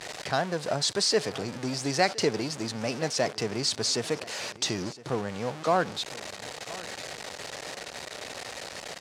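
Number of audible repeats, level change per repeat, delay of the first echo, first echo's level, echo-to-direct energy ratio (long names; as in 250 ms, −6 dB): 2, −10.0 dB, 1,014 ms, −19.0 dB, −18.5 dB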